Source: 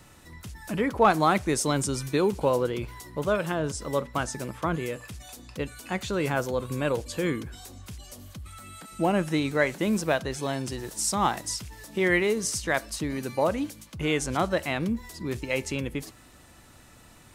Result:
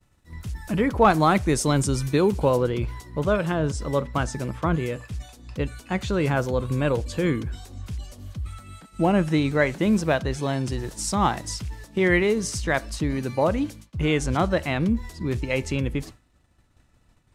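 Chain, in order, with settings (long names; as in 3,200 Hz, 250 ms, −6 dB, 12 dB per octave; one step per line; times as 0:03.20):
low-shelf EQ 140 Hz +11 dB
downward expander −36 dBFS
high-shelf EQ 9,900 Hz −3.5 dB, from 0:02.57 −12 dB
level +2 dB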